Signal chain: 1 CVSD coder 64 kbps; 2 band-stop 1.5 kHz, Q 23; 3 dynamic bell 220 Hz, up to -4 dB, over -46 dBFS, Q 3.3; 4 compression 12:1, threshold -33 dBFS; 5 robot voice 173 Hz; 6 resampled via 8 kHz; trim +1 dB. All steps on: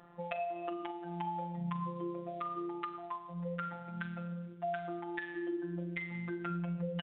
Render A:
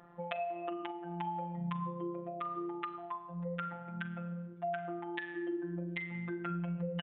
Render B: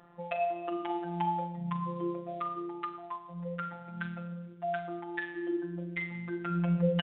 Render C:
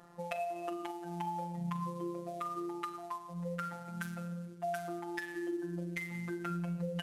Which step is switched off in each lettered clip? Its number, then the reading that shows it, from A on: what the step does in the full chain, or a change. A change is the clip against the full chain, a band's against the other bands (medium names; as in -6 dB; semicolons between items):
1, 4 kHz band +1.5 dB; 4, mean gain reduction 3.0 dB; 6, 4 kHz band +2.0 dB